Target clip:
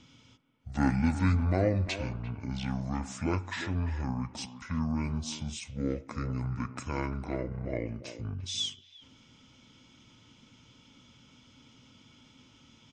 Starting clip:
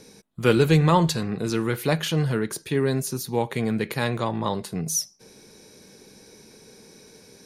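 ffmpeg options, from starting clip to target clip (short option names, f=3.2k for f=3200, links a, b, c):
-filter_complex "[0:a]asplit=2[a][b];[b]adelay=200,highpass=300,lowpass=3.4k,asoftclip=type=hard:threshold=-13.5dB,volume=-11dB[c];[a][c]amix=inputs=2:normalize=0,asetrate=25442,aresample=44100,volume=-8.5dB"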